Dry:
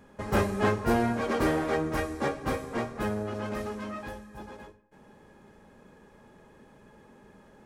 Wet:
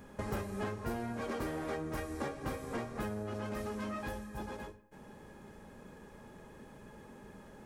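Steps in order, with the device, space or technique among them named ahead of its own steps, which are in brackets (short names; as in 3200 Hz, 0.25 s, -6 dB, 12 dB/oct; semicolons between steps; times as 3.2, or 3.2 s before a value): ASMR close-microphone chain (low shelf 160 Hz +3.5 dB; compressor 8:1, threshold -36 dBFS, peak gain reduction 16.5 dB; high shelf 8200 Hz +7 dB); gain +1 dB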